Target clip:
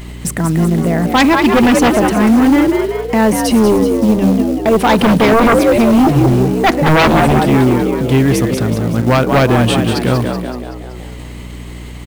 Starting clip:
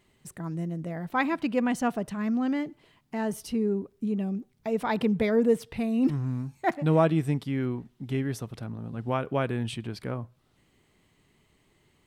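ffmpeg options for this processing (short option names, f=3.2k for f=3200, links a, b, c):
-filter_complex "[0:a]agate=range=-33dB:threshold=-52dB:ratio=3:detection=peak,acompressor=mode=upward:threshold=-32dB:ratio=2.5,asplit=8[a][b][c][d][e][f][g][h];[b]adelay=189,afreqshift=62,volume=-7dB[i];[c]adelay=378,afreqshift=124,volume=-12.4dB[j];[d]adelay=567,afreqshift=186,volume=-17.7dB[k];[e]adelay=756,afreqshift=248,volume=-23.1dB[l];[f]adelay=945,afreqshift=310,volume=-28.4dB[m];[g]adelay=1134,afreqshift=372,volume=-33.8dB[n];[h]adelay=1323,afreqshift=434,volume=-39.1dB[o];[a][i][j][k][l][m][n][o]amix=inputs=8:normalize=0,aeval=exprs='0.596*sin(PI/2*7.08*val(0)/0.596)':c=same,bandreject=f=50:t=h:w=6,bandreject=f=100:t=h:w=6,bandreject=f=150:t=h:w=6,bandreject=f=200:t=h:w=6,acrusher=bits=6:mode=log:mix=0:aa=0.000001,aeval=exprs='val(0)+0.0447*(sin(2*PI*60*n/s)+sin(2*PI*2*60*n/s)/2+sin(2*PI*3*60*n/s)/3+sin(2*PI*4*60*n/s)/4+sin(2*PI*5*60*n/s)/5)':c=same,volume=-1dB"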